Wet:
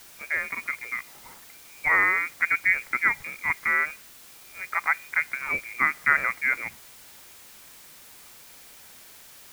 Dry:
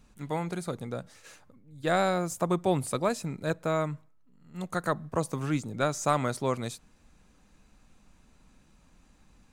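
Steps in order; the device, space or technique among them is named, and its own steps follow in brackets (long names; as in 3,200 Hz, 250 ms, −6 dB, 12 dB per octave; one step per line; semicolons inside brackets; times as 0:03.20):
scrambled radio voice (band-pass filter 340–2,800 Hz; voice inversion scrambler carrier 2,600 Hz; white noise bed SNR 20 dB)
level +5.5 dB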